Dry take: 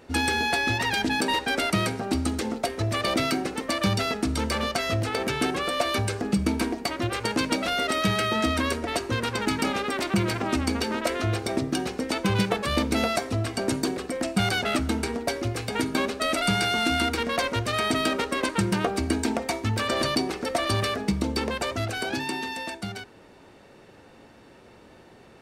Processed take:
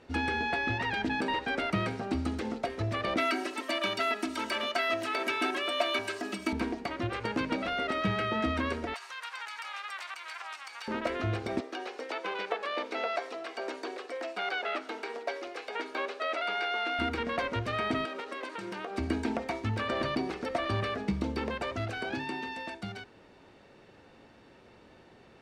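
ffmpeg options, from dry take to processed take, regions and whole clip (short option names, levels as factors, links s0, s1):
-filter_complex "[0:a]asettb=1/sr,asplit=3[s0][s1][s2];[s0]atrim=end=3.184[s3];[s1]atrim=start=3.18:end=6.53,asetpts=PTS-STARTPTS,afade=t=in:d=0.004:c=qsin,afade=t=out:st=3.346:d=0.004:c=qsin,highpass=160,aemphasis=mode=production:type=riaa,aecho=1:1:3.1:0.86,atrim=end_sample=147735[s4];[s2]atrim=start=6.526[s5];[s3][s4]acrossfade=d=0.004:c1=hsin:c2=qsin[s6];[s6][s5]acrossfade=d=0.004:c1=qsin:c2=hsin,asettb=1/sr,asplit=3[s7][s8][s9];[s7]atrim=end=8.944[s10];[s8]atrim=start=8.94:end=10.88,asetpts=PTS-STARTPTS,afade=t=in:d=0.004:c=qsin,afade=t=out:st=1.936:d=0.004:c=qsin,highshelf=f=5100:g=11,acompressor=threshold=0.0562:ratio=6:attack=3.2:release=140:knee=1:detection=peak,highpass=f=910:w=0.5412,highpass=f=910:w=1.3066[s11];[s9]atrim=start=10.876[s12];[s10][s11]acrossfade=d=0.004:c1=hsin:c2=qsin[s13];[s13][s12]acrossfade=d=0.004:c1=qsin:c2=hsin,asettb=1/sr,asplit=3[s14][s15][s16];[s14]atrim=end=11.604[s17];[s15]atrim=start=11.6:end=16.99,asetpts=PTS-STARTPTS,afade=t=in:d=0.004:c=qsin,afade=t=out:st=5.386:d=0.004:c=qsin,highpass=f=410:w=0.5412,highpass=f=410:w=1.3066,acrossover=split=6700[s18][s19];[s19]acompressor=threshold=0.00316:ratio=4:attack=1:release=60[s20];[s18][s20]amix=inputs=2:normalize=0[s21];[s16]atrim=start=16.986[s22];[s17][s21]acrossfade=d=0.004:c1=hsin:c2=qsin[s23];[s23][s22]acrossfade=d=0.004:c1=qsin:c2=hsin,asettb=1/sr,asplit=3[s24][s25][s26];[s24]atrim=end=18.054[s27];[s25]atrim=start=18.05:end=18.98,asetpts=PTS-STARTPTS,afade=t=in:d=0.004:c=qsin,afade=t=out:st=0.926:d=0.004:c=qsin,highpass=350,acompressor=threshold=0.0355:ratio=4:attack=3.2:release=140:knee=1:detection=peak[s28];[s26]atrim=start=18.976[s29];[s27][s28]acrossfade=d=0.004:c1=hsin:c2=qsin[s30];[s30][s29]acrossfade=d=0.004:c1=qsin:c2=hsin,lowpass=3800,acrossover=split=2800[s31][s32];[s32]acompressor=threshold=0.00447:ratio=4:attack=1:release=60[s33];[s31][s33]amix=inputs=2:normalize=0,aemphasis=mode=production:type=50fm,volume=0.562"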